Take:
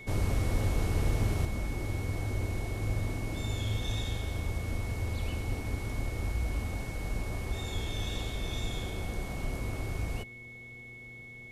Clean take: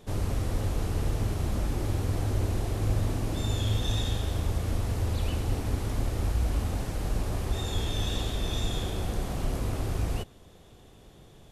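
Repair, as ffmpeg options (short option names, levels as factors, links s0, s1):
-af "bandreject=f=120.5:t=h:w=4,bandreject=f=241:t=h:w=4,bandreject=f=361.5:t=h:w=4,bandreject=f=482:t=h:w=4,bandreject=f=2200:w=30,asetnsamples=n=441:p=0,asendcmd='1.45 volume volume 5dB',volume=1"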